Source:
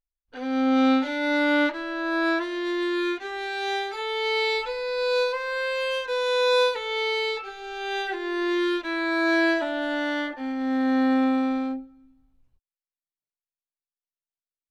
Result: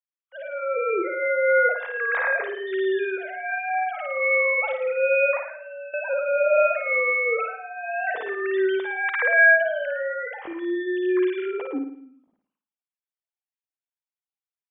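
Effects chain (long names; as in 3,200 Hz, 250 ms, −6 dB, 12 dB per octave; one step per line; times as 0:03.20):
three sine waves on the formant tracks
0:05.39–0:05.94: output level in coarse steps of 20 dB
flutter between parallel walls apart 9.4 metres, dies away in 0.56 s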